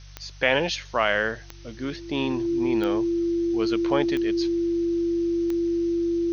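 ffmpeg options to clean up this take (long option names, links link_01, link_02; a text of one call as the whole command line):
ffmpeg -i in.wav -af "adeclick=threshold=4,bandreject=frequency=48.5:width_type=h:width=4,bandreject=frequency=97:width_type=h:width=4,bandreject=frequency=145.5:width_type=h:width=4,bandreject=frequency=340:width=30,afftdn=noise_reduction=30:noise_floor=-42" out.wav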